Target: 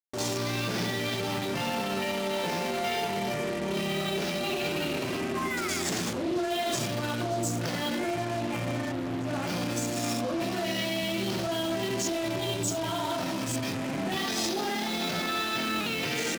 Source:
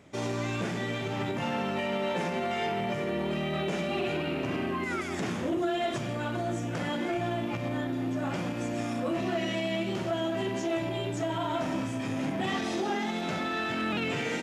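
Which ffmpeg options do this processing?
-filter_complex "[0:a]equalizer=f=4600:t=o:w=0.44:g=4,areverse,acompressor=mode=upward:threshold=0.0158:ratio=2.5,areverse,alimiter=level_in=1.5:limit=0.0631:level=0:latency=1:release=34,volume=0.668,acontrast=44,bass=f=250:g=-1,treble=f=4000:g=14,aeval=exprs='val(0)+0.00251*sin(2*PI*4000*n/s)':c=same,tremolo=f=260:d=0.261,highpass=f=64:p=1,atempo=0.88,asplit=2[s0][s1];[s1]aecho=0:1:51|67:0.158|0.237[s2];[s0][s2]amix=inputs=2:normalize=0,afwtdn=0.0112,acrusher=bits=5:mix=0:aa=0.5"

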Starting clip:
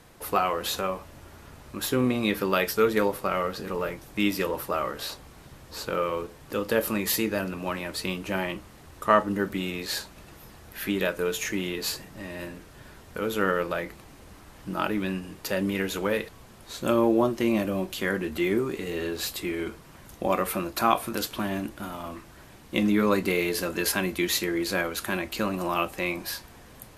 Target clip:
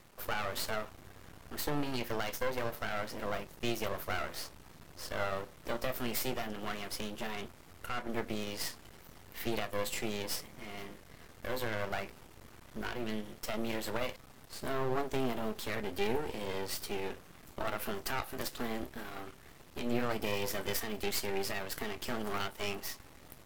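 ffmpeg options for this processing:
-af "alimiter=limit=0.168:level=0:latency=1:release=228,aeval=exprs='max(val(0),0)':c=same,asetrate=50715,aresample=44100,volume=0.75"

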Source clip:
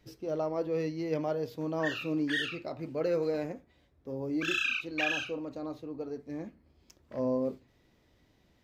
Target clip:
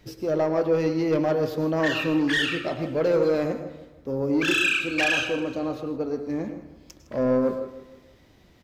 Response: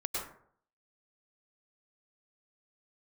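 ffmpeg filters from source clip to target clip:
-filter_complex "[0:a]asoftclip=type=tanh:threshold=0.0473,aecho=1:1:159|318|477|636:0.158|0.0729|0.0335|0.0154,asplit=2[s0][s1];[1:a]atrim=start_sample=2205[s2];[s1][s2]afir=irnorm=-1:irlink=0,volume=0.335[s3];[s0][s3]amix=inputs=2:normalize=0,volume=2.51"

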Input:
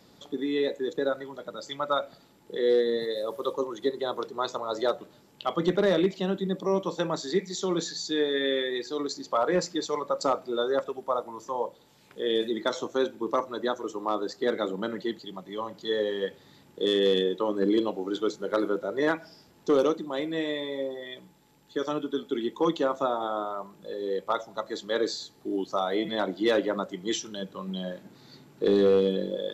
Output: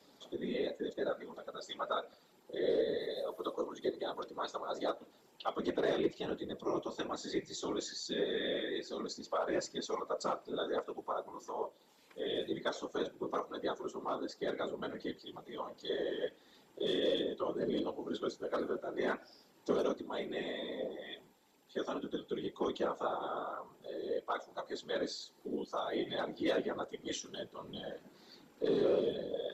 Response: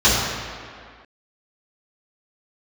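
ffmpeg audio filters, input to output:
-filter_complex "[0:a]highpass=f=240:w=0.5412,highpass=f=240:w=1.3066,asplit=2[s0][s1];[s1]acompressor=threshold=0.01:ratio=6,volume=0.75[s2];[s0][s2]amix=inputs=2:normalize=0,afftfilt=real='hypot(re,im)*cos(2*PI*random(0))':imag='hypot(re,im)*sin(2*PI*random(1))':win_size=512:overlap=0.75,flanger=delay=3.6:depth=2.1:regen=-56:speed=1.4:shape=triangular"

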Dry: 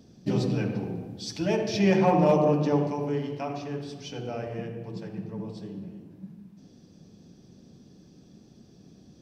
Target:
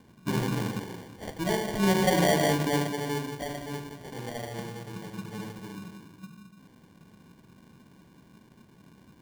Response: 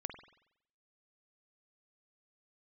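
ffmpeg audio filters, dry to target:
-filter_complex "[0:a]asettb=1/sr,asplit=3[s0][s1][s2];[s0]atrim=end=0.794[s3];[s1]atrim=start=0.79:end=1.24,asetpts=PTS-STARTPTS,afade=t=in:d=0.004:c=qsin,afade=t=out:st=0.446:d=0.004:c=qsin,equalizer=f=150:t=o:w=1.7:g=-7[s4];[s2]atrim=start=1.236[s5];[s3][s4]acrossfade=d=0.004:c1=hsin:c2=qsin[s6];[s6][s5]acrossfade=d=0.004:c1=qsin:c2=hsin,acrusher=samples=34:mix=1:aa=0.000001,volume=0.75"

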